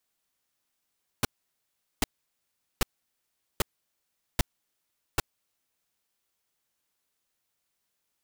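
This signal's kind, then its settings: noise bursts pink, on 0.02 s, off 0.77 s, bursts 6, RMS -22.5 dBFS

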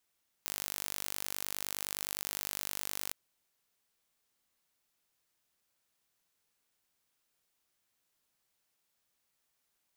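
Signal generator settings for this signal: pulse train 49.7/s, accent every 0, -10 dBFS 2.66 s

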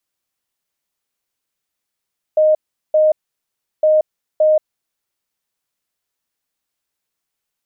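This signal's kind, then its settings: beep pattern sine 619 Hz, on 0.18 s, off 0.39 s, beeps 2, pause 0.71 s, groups 2, -9 dBFS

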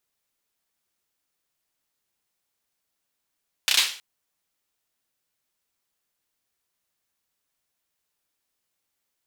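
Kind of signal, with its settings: hand clap length 0.32 s, bursts 4, apart 31 ms, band 3300 Hz, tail 0.42 s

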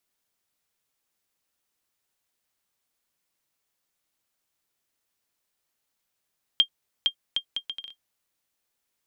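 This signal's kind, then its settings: bouncing ball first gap 0.46 s, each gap 0.66, 3200 Hz, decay 85 ms -8.5 dBFS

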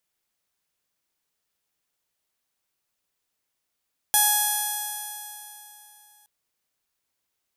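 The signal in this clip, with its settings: stretched partials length 2.12 s, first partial 836 Hz, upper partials -5.5/-18.5/-3.5/-12/-10/-4.5/-8.5/-9.5/-3.5/2/-4/-11/2.5 dB, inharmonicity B 0.00038, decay 3.15 s, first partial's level -23.5 dB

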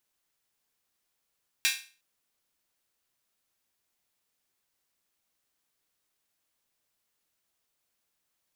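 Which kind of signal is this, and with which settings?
open hi-hat length 0.36 s, high-pass 2200 Hz, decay 0.37 s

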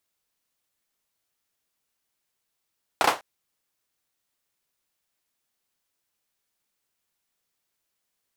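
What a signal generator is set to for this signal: hand clap length 0.20 s, bursts 3, apart 32 ms, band 810 Hz, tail 0.24 s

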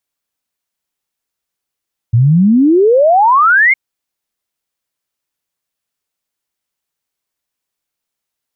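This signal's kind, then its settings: log sweep 110 Hz -> 2200 Hz 1.61 s -5.5 dBFS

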